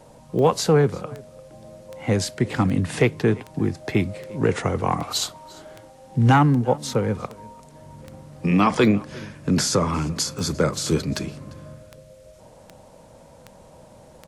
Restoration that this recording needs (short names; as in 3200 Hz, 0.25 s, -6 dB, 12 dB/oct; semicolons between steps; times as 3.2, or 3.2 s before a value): de-click; inverse comb 0.347 s -23 dB